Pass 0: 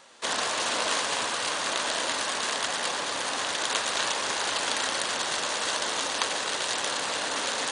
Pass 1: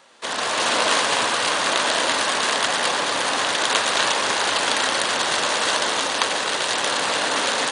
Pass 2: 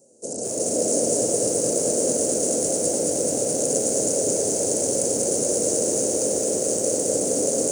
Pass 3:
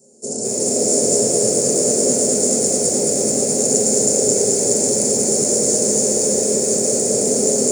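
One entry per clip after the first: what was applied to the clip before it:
high-pass filter 78 Hz; parametric band 6,900 Hz −4 dB 1.2 octaves; automatic gain control gain up to 7.5 dB; level +1.5 dB
elliptic band-stop filter 520–6,800 Hz, stop band 40 dB; feedback echo at a low word length 216 ms, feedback 80%, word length 8 bits, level −3 dB; level +4.5 dB
convolution reverb RT60 0.30 s, pre-delay 3 ms, DRR −2 dB; level +1.5 dB

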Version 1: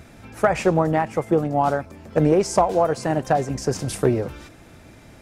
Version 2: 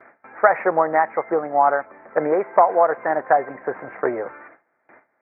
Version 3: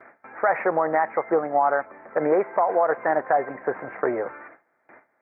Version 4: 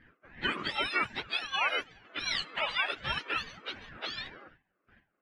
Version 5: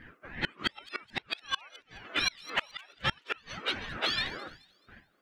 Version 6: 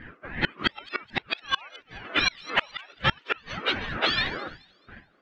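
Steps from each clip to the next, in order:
Butterworth low-pass 2,100 Hz 72 dB per octave; noise gate with hold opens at −36 dBFS; high-pass filter 670 Hz 12 dB per octave; level +6.5 dB
brickwall limiter −11 dBFS, peak gain reduction 9 dB
frequency axis turned over on the octave scale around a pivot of 1,200 Hz; low-pass that shuts in the quiet parts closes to 1,400 Hz, open at −19.5 dBFS; ring modulator whose carrier an LFO sweeps 670 Hz, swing 40%, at 2.6 Hz; level −3.5 dB
gate with flip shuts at −21 dBFS, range −32 dB; in parallel at −3.5 dB: soft clipping −33 dBFS, distortion −9 dB; on the sum: delay with a high-pass on its return 214 ms, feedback 36%, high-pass 5,100 Hz, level −12 dB; level +4.5 dB
high-frequency loss of the air 140 metres; level +8 dB

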